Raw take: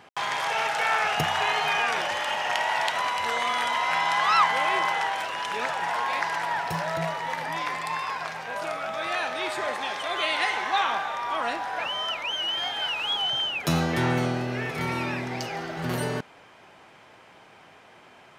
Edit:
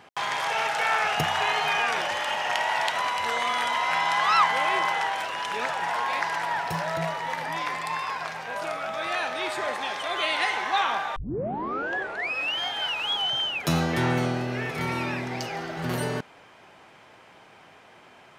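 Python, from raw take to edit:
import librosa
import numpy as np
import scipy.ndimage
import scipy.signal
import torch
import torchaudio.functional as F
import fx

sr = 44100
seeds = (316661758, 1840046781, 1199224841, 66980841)

y = fx.edit(x, sr, fx.tape_start(start_s=11.16, length_s=1.44), tone=tone)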